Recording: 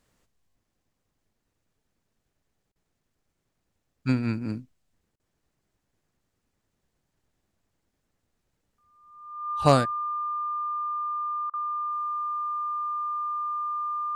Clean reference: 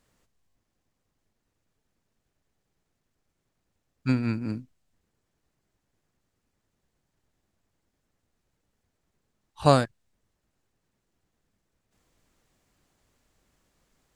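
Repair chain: clip repair -5.5 dBFS; band-stop 1.2 kHz, Q 30; interpolate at 2.72/5.16/11.50 s, 35 ms

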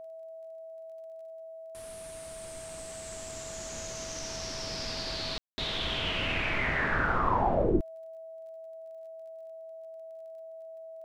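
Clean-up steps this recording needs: de-click; band-stop 650 Hz, Q 30; room tone fill 5.38–5.58 s

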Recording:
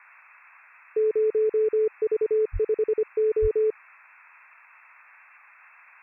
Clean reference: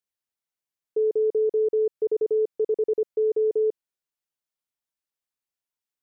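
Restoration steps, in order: 2.52–2.64 s: high-pass 140 Hz 24 dB/octave; 3.41–3.53 s: high-pass 140 Hz 24 dB/octave; noise print and reduce 30 dB

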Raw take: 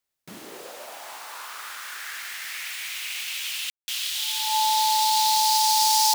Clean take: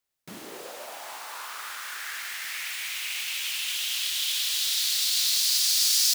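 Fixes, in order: band-stop 870 Hz, Q 30; room tone fill 3.70–3.88 s

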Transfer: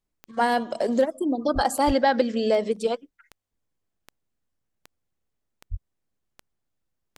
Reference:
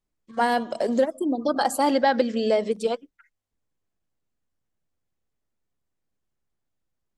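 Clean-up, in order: de-click; 1.54–1.66 s: high-pass 140 Hz 24 dB/octave; 1.86–1.98 s: high-pass 140 Hz 24 dB/octave; 5.70–5.82 s: high-pass 140 Hz 24 dB/octave

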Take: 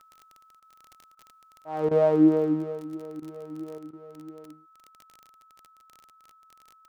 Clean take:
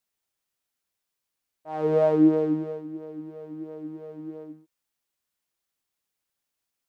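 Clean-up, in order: de-click; band-stop 1.3 kHz, Q 30; interpolate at 0.60/1.15/1.89/3.20/3.91 s, 20 ms; trim 0 dB, from 3.78 s +5.5 dB

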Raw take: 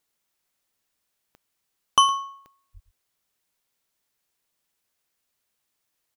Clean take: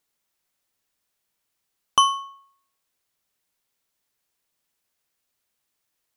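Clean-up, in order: de-click; 2.73–2.85 s: high-pass 140 Hz 24 dB/octave; inverse comb 112 ms -16 dB

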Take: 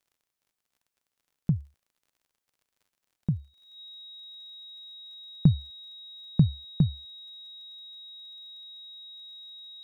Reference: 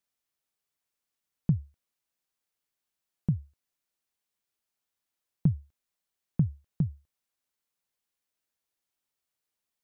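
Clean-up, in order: de-click; band-stop 3.8 kHz, Q 30; gain correction -5 dB, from 3.57 s

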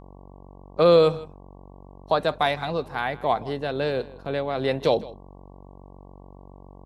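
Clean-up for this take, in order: de-hum 47.1 Hz, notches 24; inverse comb 161 ms -19.5 dB

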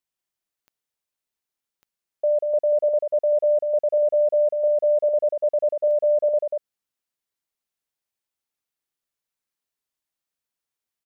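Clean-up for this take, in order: de-click; inverse comb 189 ms -4.5 dB

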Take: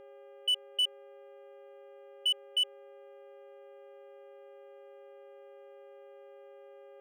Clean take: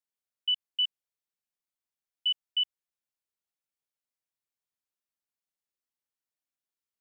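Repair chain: clip repair -24 dBFS; de-hum 403.2 Hz, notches 8; band-stop 550 Hz, Q 30

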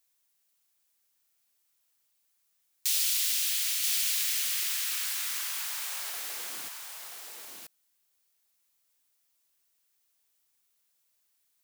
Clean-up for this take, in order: expander -66 dBFS, range -21 dB; inverse comb 982 ms -4 dB

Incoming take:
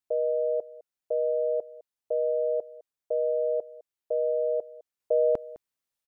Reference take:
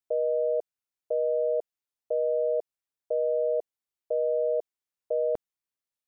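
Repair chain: inverse comb 207 ms -19.5 dB; gain correction -4 dB, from 5.00 s

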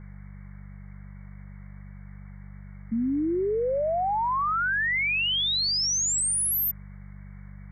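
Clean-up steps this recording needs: de-hum 48.7 Hz, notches 4; noise reduction 30 dB, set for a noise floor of -43 dBFS

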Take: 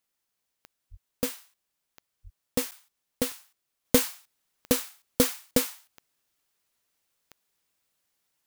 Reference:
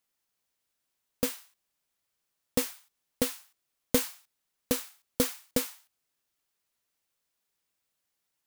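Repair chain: de-click; 0.90–1.02 s: high-pass 140 Hz 24 dB/octave; 2.23–2.35 s: high-pass 140 Hz 24 dB/octave; interpolate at 2.71 s, 8.6 ms; 3.85 s: gain correction -4.5 dB

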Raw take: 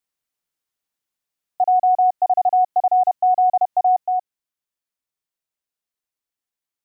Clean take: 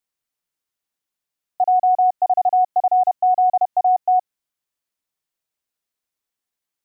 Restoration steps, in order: trim 0 dB, from 4.06 s +4.5 dB

